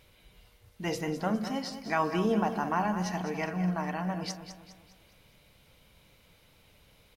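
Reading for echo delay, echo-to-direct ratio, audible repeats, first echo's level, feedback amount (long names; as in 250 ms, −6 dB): 204 ms, −9.5 dB, 4, −10.5 dB, 43%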